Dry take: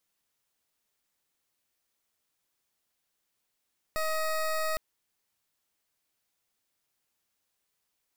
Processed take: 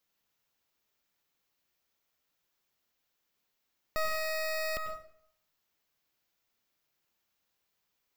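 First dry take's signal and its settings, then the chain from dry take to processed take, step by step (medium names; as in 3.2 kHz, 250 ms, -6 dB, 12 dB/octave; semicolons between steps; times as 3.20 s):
pulse 631 Hz, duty 20% -29.5 dBFS 0.81 s
peaking EQ 9.3 kHz -12.5 dB 0.45 oct; plate-style reverb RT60 0.65 s, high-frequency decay 0.65×, pre-delay 85 ms, DRR 6 dB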